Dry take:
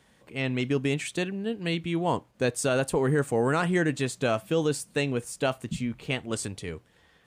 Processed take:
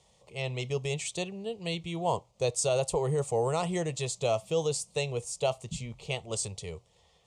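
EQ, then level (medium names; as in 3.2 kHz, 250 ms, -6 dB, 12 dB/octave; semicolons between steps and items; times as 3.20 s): resonant low-pass 7.3 kHz, resonance Q 1.6; static phaser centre 660 Hz, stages 4; 0.0 dB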